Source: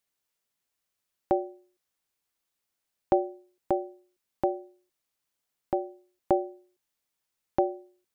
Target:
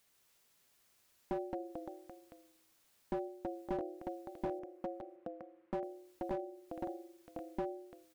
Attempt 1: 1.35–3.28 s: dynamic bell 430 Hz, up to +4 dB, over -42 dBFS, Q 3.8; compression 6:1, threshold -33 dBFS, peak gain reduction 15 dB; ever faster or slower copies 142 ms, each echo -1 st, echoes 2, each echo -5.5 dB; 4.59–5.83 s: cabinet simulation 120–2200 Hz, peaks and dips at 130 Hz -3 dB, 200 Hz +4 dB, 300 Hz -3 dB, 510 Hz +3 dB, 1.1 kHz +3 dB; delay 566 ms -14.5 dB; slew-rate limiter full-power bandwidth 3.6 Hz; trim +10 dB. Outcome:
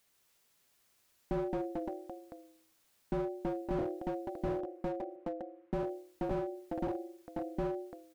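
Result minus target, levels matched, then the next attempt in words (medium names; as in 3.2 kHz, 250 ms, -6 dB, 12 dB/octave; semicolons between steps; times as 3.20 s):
compression: peak gain reduction -8.5 dB
1.35–3.28 s: dynamic bell 430 Hz, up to +4 dB, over -42 dBFS, Q 3.8; compression 6:1, threshold -43.5 dBFS, peak gain reduction 24 dB; ever faster or slower copies 142 ms, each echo -1 st, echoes 2, each echo -5.5 dB; 4.59–5.83 s: cabinet simulation 120–2200 Hz, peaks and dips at 130 Hz -3 dB, 200 Hz +4 dB, 300 Hz -3 dB, 510 Hz +3 dB, 1.1 kHz +3 dB; delay 566 ms -14.5 dB; slew-rate limiter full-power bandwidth 3.6 Hz; trim +10 dB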